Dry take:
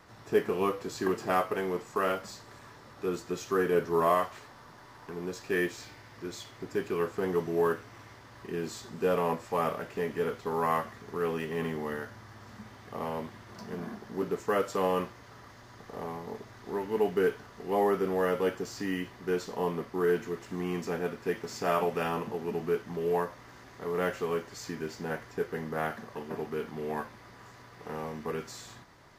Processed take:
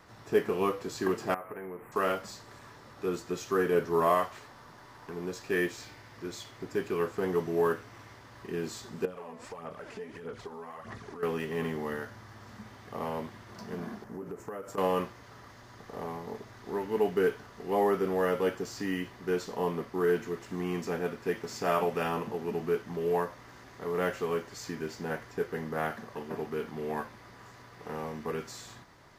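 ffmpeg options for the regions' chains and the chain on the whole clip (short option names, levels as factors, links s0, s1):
-filter_complex "[0:a]asettb=1/sr,asplit=3[s0][s1][s2];[s0]atrim=end=1.344[s3];[s1]atrim=start=1.34:end=1.92,asetpts=PTS-STARTPTS,afade=t=in:d=0.004:c=qsin,afade=t=out:st=0.576:d=0.004:c=qsin,acompressor=threshold=0.0112:ratio=4:attack=3.2:release=140:knee=1:detection=peak,asuperstop=centerf=5100:order=8:qfactor=0.68,highshelf=f=12000:g=9[s4];[s2]atrim=start=1.916[s5];[s3][s4]acrossfade=d=0.004:c1=hsin:c2=qsin[s6];[s6][s5]acrossfade=d=0.004:c1=qsin:c2=hsin,asettb=1/sr,asplit=3[s7][s8][s9];[s7]atrim=end=9.054[s10];[s8]atrim=start=9.05:end=11.23,asetpts=PTS-STARTPTS,afade=t=in:d=0.004:c=qsin,afade=t=out:st=2.176:d=0.004:c=qsin,lowpass=f=11000:w=0.5412,lowpass=f=11000:w=1.3066,acompressor=threshold=0.01:ratio=20:attack=3.2:release=140:knee=1:detection=peak,aphaser=in_gain=1:out_gain=1:delay=4.6:decay=0.55:speed=1.6:type=sinusoidal[s11];[s9]atrim=start=11.226[s12];[s10][s11]acrossfade=d=0.004:c1=hsin:c2=qsin[s13];[s13][s12]acrossfade=d=0.004:c1=qsin:c2=hsin,asettb=1/sr,asplit=3[s14][s15][s16];[s14]atrim=end=14.044[s17];[s15]atrim=start=14.04:end=14.78,asetpts=PTS-STARTPTS,afade=t=in:d=0.004:c=qsin,afade=t=out:st=0.736:d=0.004:c=qsin,equalizer=f=3800:t=o:w=1.4:g=-13,acompressor=threshold=0.0178:ratio=16:attack=3.2:release=140:knee=1:detection=peak[s18];[s16]atrim=start=14.776[s19];[s17][s18]acrossfade=d=0.004:c1=hsin:c2=qsin[s20];[s20][s19]acrossfade=d=0.004:c1=qsin:c2=hsin"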